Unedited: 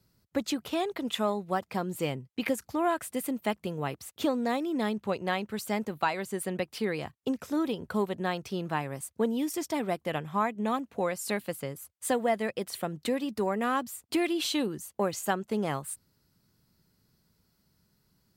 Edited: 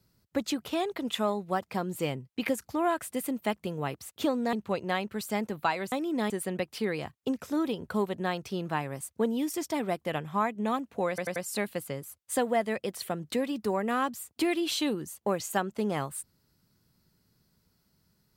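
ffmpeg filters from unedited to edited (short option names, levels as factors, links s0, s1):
-filter_complex "[0:a]asplit=7[s0][s1][s2][s3][s4][s5][s6];[s0]atrim=end=4.532[s7];[s1]atrim=start=4.908:end=6.302[s8];[s2]atrim=start=4.528:end=4.912[s9];[s3]atrim=start=6.298:end=11.182[s10];[s4]atrim=start=11.088:end=11.182[s11];[s5]atrim=start=11.088:end=11.182[s12];[s6]atrim=start=11.088[s13];[s7][s8]acrossfade=d=0.004:c1=hsin:c2=hsin[s14];[s14][s9]acrossfade=d=0.004:c1=hsin:c2=hsin[s15];[s15][s10]acrossfade=d=0.004:c1=hsin:c2=hsin[s16];[s16][s11]acrossfade=d=0.004:c1=hsin:c2=hsin[s17];[s17][s12]acrossfade=d=0.004:c1=hsin:c2=hsin[s18];[s18][s13]acrossfade=d=0.004:c1=hsin:c2=hsin"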